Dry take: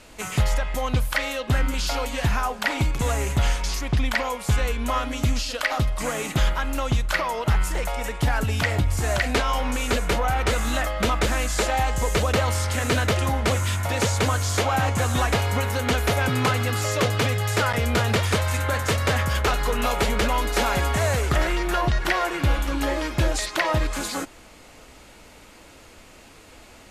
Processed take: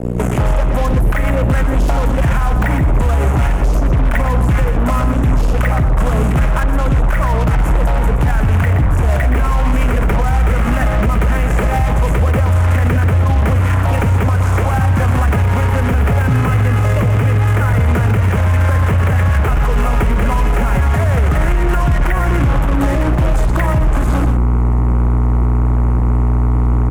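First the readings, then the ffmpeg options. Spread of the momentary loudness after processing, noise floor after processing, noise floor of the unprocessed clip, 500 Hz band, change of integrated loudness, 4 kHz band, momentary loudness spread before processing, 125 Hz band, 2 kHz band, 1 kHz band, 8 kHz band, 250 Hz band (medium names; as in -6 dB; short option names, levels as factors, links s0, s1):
2 LU, -15 dBFS, -48 dBFS, +5.0 dB, +8.5 dB, -5.5 dB, 3 LU, +12.5 dB, +3.0 dB, +5.0 dB, -4.5 dB, +10.0 dB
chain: -filter_complex "[0:a]acrossover=split=190[s0][s1];[s0]asoftclip=type=tanh:threshold=0.075[s2];[s2][s1]amix=inputs=2:normalize=0,aeval=exprs='val(0)+0.0224*(sin(2*PI*60*n/s)+sin(2*PI*2*60*n/s)/2+sin(2*PI*3*60*n/s)/3+sin(2*PI*4*60*n/s)/4+sin(2*PI*5*60*n/s)/5)':c=same,afwtdn=0.0355,asubboost=boost=3.5:cutoff=180,acontrast=49,bandreject=f=50:t=h:w=6,bandreject=f=100:t=h:w=6,acrusher=bits=3:mix=0:aa=0.5,equalizer=f=4400:t=o:w=1.1:g=-12.5,acrossover=split=300|2300|7300[s3][s4][s5][s6];[s3]acompressor=threshold=0.126:ratio=4[s7];[s4]acompressor=threshold=0.0398:ratio=4[s8];[s5]acompressor=threshold=0.00708:ratio=4[s9];[s6]acompressor=threshold=0.00398:ratio=4[s10];[s7][s8][s9][s10]amix=inputs=4:normalize=0,asplit=2[s11][s12];[s12]aecho=0:1:123:0.335[s13];[s11][s13]amix=inputs=2:normalize=0,alimiter=level_in=8.41:limit=0.891:release=50:level=0:latency=1,volume=0.531"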